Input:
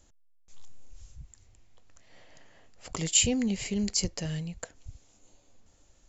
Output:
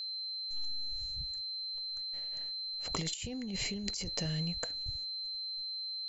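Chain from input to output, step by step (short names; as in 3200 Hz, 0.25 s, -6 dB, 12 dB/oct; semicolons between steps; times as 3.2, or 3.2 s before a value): high shelf 5000 Hz +9 dB; gate -51 dBFS, range -26 dB; air absorption 99 m; whine 4100 Hz -37 dBFS; negative-ratio compressor -33 dBFS, ratio -1; gain -2 dB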